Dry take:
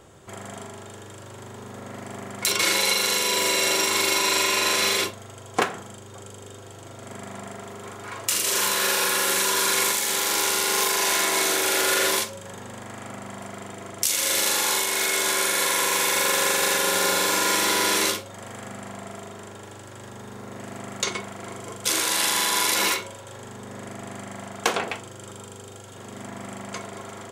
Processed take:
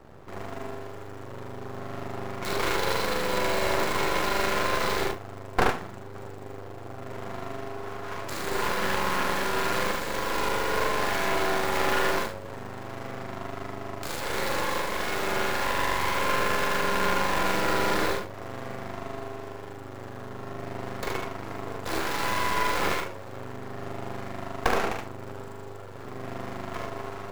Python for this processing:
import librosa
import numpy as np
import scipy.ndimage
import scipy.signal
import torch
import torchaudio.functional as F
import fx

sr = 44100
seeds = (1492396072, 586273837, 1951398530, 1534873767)

p1 = scipy.ndimage.median_filter(x, 15, mode='constant')
p2 = fx.peak_eq(p1, sr, hz=8300.0, db=-4.5, octaves=1.5)
p3 = p2 + fx.room_early_taps(p2, sr, ms=(43, 73), db=(-6.0, -3.5), dry=0)
p4 = np.maximum(p3, 0.0)
y = p4 * librosa.db_to_amplitude(4.0)